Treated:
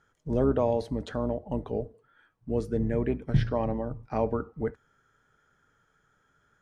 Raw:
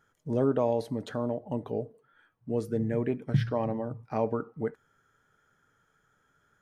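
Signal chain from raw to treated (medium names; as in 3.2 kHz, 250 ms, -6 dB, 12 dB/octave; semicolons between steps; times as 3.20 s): octave divider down 2 oct, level -6 dB; low-pass 8.3 kHz 12 dB/octave; trim +1 dB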